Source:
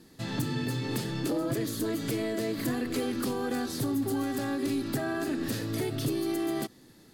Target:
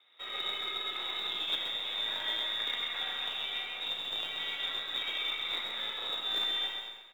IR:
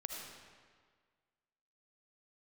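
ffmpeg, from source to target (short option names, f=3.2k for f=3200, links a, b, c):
-filter_complex "[0:a]equalizer=f=86:w=1.5:g=9.5,lowpass=f=3.3k:t=q:w=0.5098,lowpass=f=3.3k:t=q:w=0.6013,lowpass=f=3.3k:t=q:w=0.9,lowpass=f=3.3k:t=q:w=2.563,afreqshift=-3900[a];[1:a]atrim=start_sample=2205,asetrate=66150,aresample=44100[b];[a][b]afir=irnorm=-1:irlink=0,asplit=2[c][d];[d]acrusher=bits=5:dc=4:mix=0:aa=0.000001,volume=-8.5dB[e];[c][e]amix=inputs=2:normalize=0,acontrast=43,acrusher=bits=3:mode=log:mix=0:aa=0.000001,acrossover=split=330 2700:gain=0.126 1 0.0631[f][g][h];[f][g][h]amix=inputs=3:normalize=0,asplit=2[i][j];[j]aecho=0:1:131|262|393|524:0.501|0.14|0.0393|0.011[k];[i][k]amix=inputs=2:normalize=0"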